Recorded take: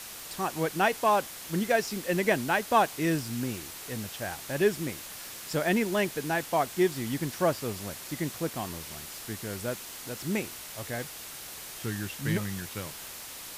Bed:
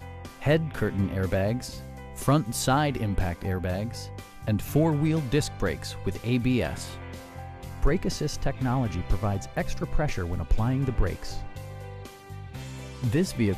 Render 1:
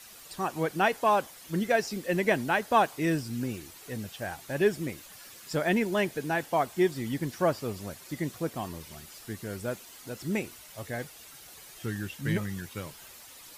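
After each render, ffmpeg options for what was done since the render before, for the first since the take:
-af "afftdn=nr=10:nf=-43"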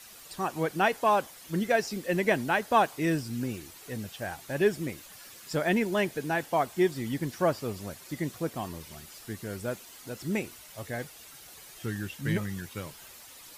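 -af anull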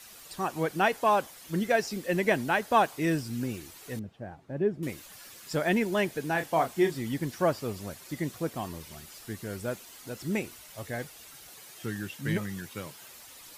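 -filter_complex "[0:a]asettb=1/sr,asplit=3[a][b][c];[a]atrim=end=3.994[d];[b]atrim=start=3.99:end=4.83,asetpts=PTS-STARTPTS,afade=t=in:d=0.004:c=qsin,afade=t=out:st=0.836:d=0.004:c=qsin,bandpass=f=180:t=q:w=0.53[e];[c]atrim=start=4.826[f];[d][e]acrossfade=d=0.004:c1=hsin:c2=qsin[g];[g][f]acrossfade=d=0.004:c1=qsin:c2=hsin,asettb=1/sr,asplit=3[h][i][j];[h]atrim=end=6.324[k];[i]atrim=start=6.32:end=6.96,asetpts=PTS-STARTPTS,afade=t=in:d=0.004:c=qsin,afade=t=out:st=0.636:d=0.004:c=qsin,asplit=2[l][m];[m]adelay=31,volume=-7.5dB[n];[l][n]amix=inputs=2:normalize=0,atrim=end_sample=28224[o];[j]atrim=start=6.956[p];[k][o]acrossfade=d=0.004:c1=hsin:c2=qsin[q];[q][p]acrossfade=d=0.004:c1=qsin:c2=hsin,asettb=1/sr,asplit=3[r][s][t];[r]atrim=end=11.504[u];[s]atrim=start=11.5:end=13.14,asetpts=PTS-STARTPTS,afade=t=in:d=0.004:c=qsin,afade=t=out:st=1.636:d=0.004:c=qsin,highpass=110[v];[t]atrim=start=13.136[w];[u][v]acrossfade=d=0.004:c1=hsin:c2=qsin[x];[x][w]acrossfade=d=0.004:c1=qsin:c2=hsin"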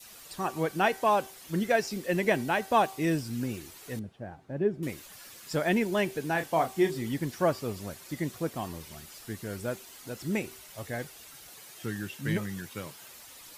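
-af "bandreject=f=385:t=h:w=4,bandreject=f=770:t=h:w=4,bandreject=f=1.155k:t=h:w=4,bandreject=f=1.54k:t=h:w=4,bandreject=f=1.925k:t=h:w=4,bandreject=f=2.31k:t=h:w=4,bandreject=f=2.695k:t=h:w=4,bandreject=f=3.08k:t=h:w=4,bandreject=f=3.465k:t=h:w=4,bandreject=f=3.85k:t=h:w=4,bandreject=f=4.235k:t=h:w=4,bandreject=f=4.62k:t=h:w=4,bandreject=f=5.005k:t=h:w=4,bandreject=f=5.39k:t=h:w=4,bandreject=f=5.775k:t=h:w=4,bandreject=f=6.16k:t=h:w=4,bandreject=f=6.545k:t=h:w=4,bandreject=f=6.93k:t=h:w=4,bandreject=f=7.315k:t=h:w=4,bandreject=f=7.7k:t=h:w=4,bandreject=f=8.085k:t=h:w=4,bandreject=f=8.47k:t=h:w=4,bandreject=f=8.855k:t=h:w=4,bandreject=f=9.24k:t=h:w=4,bandreject=f=9.625k:t=h:w=4,bandreject=f=10.01k:t=h:w=4,bandreject=f=10.395k:t=h:w=4,bandreject=f=10.78k:t=h:w=4,bandreject=f=11.165k:t=h:w=4,adynamicequalizer=threshold=0.00891:dfrequency=1500:dqfactor=1.8:tfrequency=1500:tqfactor=1.8:attack=5:release=100:ratio=0.375:range=2.5:mode=cutabove:tftype=bell"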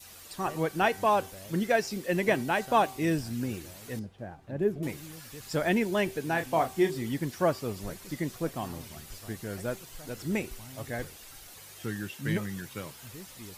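-filter_complex "[1:a]volume=-22.5dB[a];[0:a][a]amix=inputs=2:normalize=0"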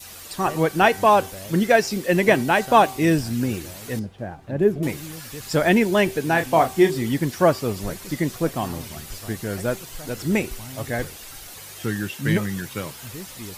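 -af "volume=9dB"

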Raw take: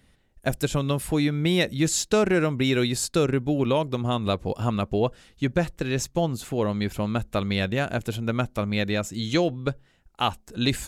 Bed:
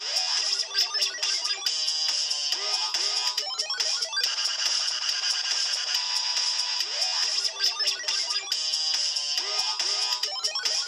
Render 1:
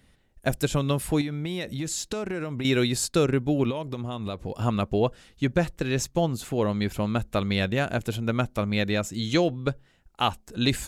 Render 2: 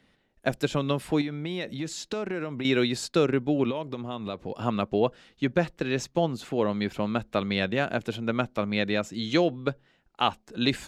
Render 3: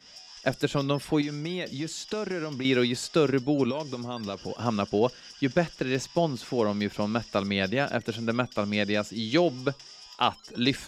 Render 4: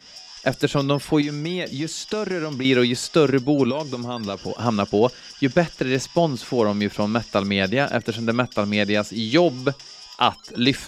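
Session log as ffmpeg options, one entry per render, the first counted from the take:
-filter_complex "[0:a]asettb=1/sr,asplit=3[a][b][c];[a]atrim=end=1.214[d];[b]atrim=start=1.21:end=2.65,asetpts=PTS-STARTPTS,afade=t=in:d=0.004:c=qsin,afade=t=out:st=1.436:d=0.004:c=qsin,acompressor=threshold=-27dB:ratio=5:attack=3.2:release=140:knee=1:detection=peak[e];[c]atrim=start=2.646[f];[d][e]acrossfade=d=0.004:c1=hsin:c2=qsin[g];[g][f]acrossfade=d=0.004:c1=qsin:c2=hsin,asettb=1/sr,asplit=3[h][i][j];[h]atrim=end=3.704[k];[i]atrim=start=3.7:end=4.54,asetpts=PTS-STARTPTS,afade=t=in:d=0.004:c=qsin,afade=t=out:st=0.836:d=0.004:c=qsin,acompressor=threshold=-27dB:ratio=6:attack=3.2:release=140:knee=1:detection=peak[l];[j]atrim=start=4.536[m];[k][l]acrossfade=d=0.004:c1=hsin:c2=qsin[n];[n][m]acrossfade=d=0.004:c1=qsin:c2=hsin"
-filter_complex "[0:a]acrossover=split=150 5500:gain=0.224 1 0.2[a][b][c];[a][b][c]amix=inputs=3:normalize=0"
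-filter_complex "[1:a]volume=-21.5dB[a];[0:a][a]amix=inputs=2:normalize=0"
-af "volume=6dB,alimiter=limit=-3dB:level=0:latency=1"

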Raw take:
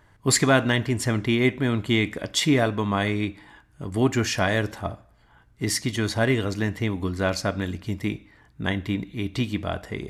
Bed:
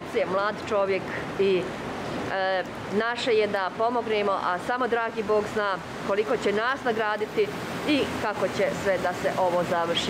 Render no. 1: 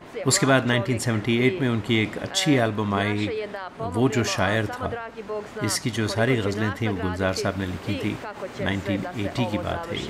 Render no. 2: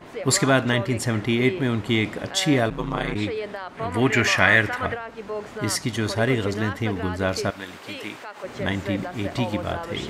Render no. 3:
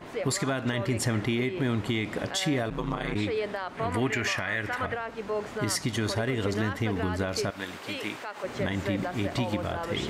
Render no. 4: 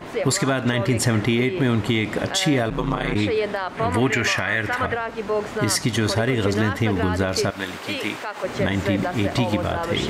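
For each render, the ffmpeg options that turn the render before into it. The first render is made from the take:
-filter_complex "[1:a]volume=-7.5dB[a];[0:a][a]amix=inputs=2:normalize=0"
-filter_complex "[0:a]asplit=3[a][b][c];[a]afade=t=out:st=2.69:d=0.02[d];[b]aeval=exprs='val(0)*sin(2*PI*65*n/s)':c=same,afade=t=in:st=2.69:d=0.02,afade=t=out:st=3.14:d=0.02[e];[c]afade=t=in:st=3.14:d=0.02[f];[d][e][f]amix=inputs=3:normalize=0,asettb=1/sr,asplit=3[g][h][i];[g]atrim=end=3.774[j];[h]atrim=start=3.77:end=4.94,asetpts=PTS-STARTPTS,afade=t=in:d=0.004:c=qsin,afade=t=out:st=1.166:d=0.004:c=qsin,equalizer=f=2k:t=o:w=0.98:g=13.5[k];[i]atrim=start=4.936[l];[j][k]acrossfade=d=0.004:c1=hsin:c2=qsin[m];[m][l]acrossfade=d=0.004:c1=qsin:c2=hsin,asettb=1/sr,asplit=3[n][o][p];[n]atrim=end=7.504[q];[o]atrim=start=7.5:end=8.44,asetpts=PTS-STARTPTS,afade=t=in:d=0.004:c=qsin,afade=t=out:st=0.936:d=0.004:c=qsin,highpass=f=820:p=1[r];[p]atrim=start=8.436[s];[q][r]acrossfade=d=0.004:c1=hsin:c2=qsin[t];[t][s]acrossfade=d=0.004:c1=qsin:c2=hsin"
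-af "acompressor=threshold=-21dB:ratio=6,alimiter=limit=-18dB:level=0:latency=1:release=126"
-af "volume=7.5dB"

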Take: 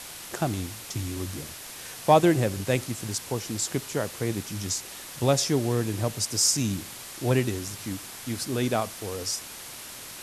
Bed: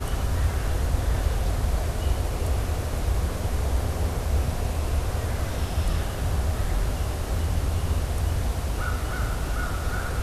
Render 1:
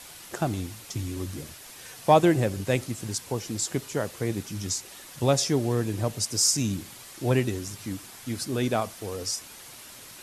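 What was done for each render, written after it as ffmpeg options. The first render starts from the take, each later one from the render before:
-af "afftdn=nr=6:nf=-42"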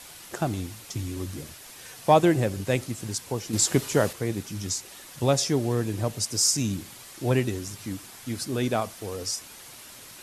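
-filter_complex "[0:a]asettb=1/sr,asplit=3[a][b][c];[a]atrim=end=3.534[d];[b]atrim=start=3.53:end=4.13,asetpts=PTS-STARTPTS,afade=t=in:d=0.004:c=qsin,afade=t=out:st=0.596:d=0.004:c=qsin,acontrast=73[e];[c]atrim=start=4.126[f];[d][e]acrossfade=d=0.004:c1=hsin:c2=qsin[g];[g][f]acrossfade=d=0.004:c1=qsin:c2=hsin"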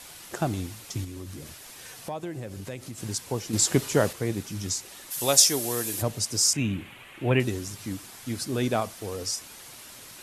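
-filter_complex "[0:a]asettb=1/sr,asplit=3[a][b][c];[a]atrim=end=1.044[d];[b]atrim=start=1.04:end=2.98,asetpts=PTS-STARTPTS,afade=t=in:d=0.004:c=qsin,afade=t=out:st=1.936:d=0.004:c=qsin,acompressor=threshold=-36dB:ratio=3:attack=3.2:release=140:knee=1:detection=peak[e];[c]atrim=start=2.976[f];[d][e]acrossfade=d=0.004:c1=hsin:c2=qsin[g];[g][f]acrossfade=d=0.004:c1=qsin:c2=hsin,asplit=3[h][i][j];[h]afade=t=out:st=5.1:d=0.02[k];[i]aemphasis=mode=production:type=riaa,afade=t=in:st=5.1:d=0.02,afade=t=out:st=6.01:d=0.02[l];[j]afade=t=in:st=6.01:d=0.02[m];[k][l][m]amix=inputs=3:normalize=0,asettb=1/sr,asplit=3[n][o][p];[n]atrim=end=6.534[q];[o]atrim=start=6.53:end=7.4,asetpts=PTS-STARTPTS,afade=t=in:d=0.004:c=qsin,afade=t=out:st=0.866:d=0.004:c=qsin,highshelf=f=3.7k:t=q:w=3:g=-11.5[r];[p]atrim=start=7.396[s];[q][r]acrossfade=d=0.004:c1=hsin:c2=qsin[t];[t][s]acrossfade=d=0.004:c1=qsin:c2=hsin"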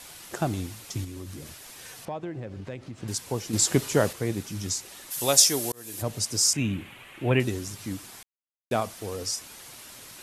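-filter_complex "[0:a]asettb=1/sr,asplit=3[a][b][c];[a]atrim=end=2.054[d];[b]atrim=start=2.05:end=3.08,asetpts=PTS-STARTPTS,afade=t=in:d=0.004:c=qsin,afade=t=out:st=1.026:d=0.004:c=qsin,adynamicsmooth=sensitivity=3:basefreq=3.2k[e];[c]atrim=start=3.076[f];[d][e]acrossfade=d=0.004:c1=hsin:c2=qsin[g];[g][f]acrossfade=d=0.004:c1=qsin:c2=hsin,asplit=4[h][i][j][k];[h]atrim=end=5.72,asetpts=PTS-STARTPTS,afade=t=out:st=5.716:d=0.004:c=hsin[l];[i]atrim=start=5.72:end=8.23,asetpts=PTS-STARTPTS,afade=t=in:d=0.45,afade=t=out:st=2.506:d=0.004:c=hsin[m];[j]atrim=start=8.23:end=8.71,asetpts=PTS-STARTPTS,volume=0[n];[k]atrim=start=8.71,asetpts=PTS-STARTPTS,afade=t=in:d=0.004:c=hsin[o];[l][m][n][o]concat=n=4:v=0:a=1"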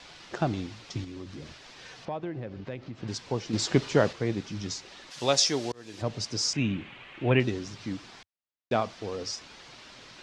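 -af "lowpass=f=5.2k:w=0.5412,lowpass=f=5.2k:w=1.3066,equalizer=f=90:t=o:w=0.33:g=-7"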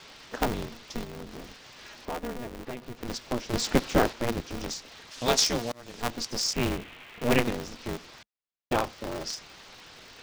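-af "aeval=exprs='val(0)*sgn(sin(2*PI*120*n/s))':c=same"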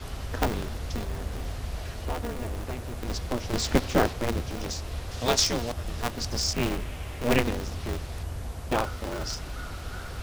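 -filter_complex "[1:a]volume=-9.5dB[a];[0:a][a]amix=inputs=2:normalize=0"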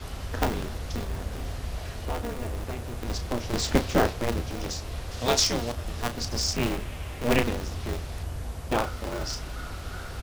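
-filter_complex "[0:a]asplit=2[a][b];[b]adelay=34,volume=-10.5dB[c];[a][c]amix=inputs=2:normalize=0"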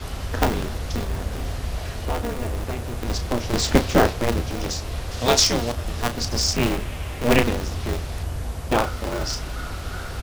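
-af "volume=5.5dB"

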